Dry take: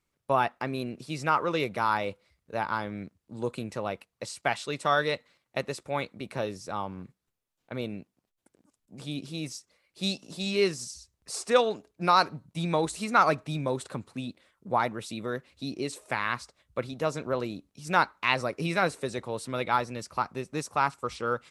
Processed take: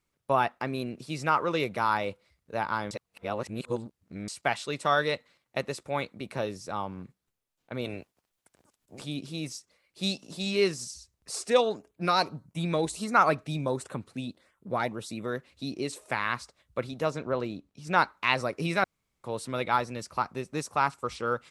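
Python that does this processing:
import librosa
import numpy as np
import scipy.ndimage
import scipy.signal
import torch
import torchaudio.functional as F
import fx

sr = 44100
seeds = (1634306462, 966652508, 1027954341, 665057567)

y = fx.spec_clip(x, sr, under_db=16, at=(7.84, 9.03), fade=0.02)
y = fx.filter_lfo_notch(y, sr, shape='saw_up', hz=1.5, low_hz=770.0, high_hz=7900.0, q=2.2, at=(11.39, 15.23))
y = fx.high_shelf(y, sr, hz=7000.0, db=-12.0, at=(17.1, 17.98))
y = fx.edit(y, sr, fx.reverse_span(start_s=2.91, length_s=1.37),
    fx.room_tone_fill(start_s=18.84, length_s=0.4), tone=tone)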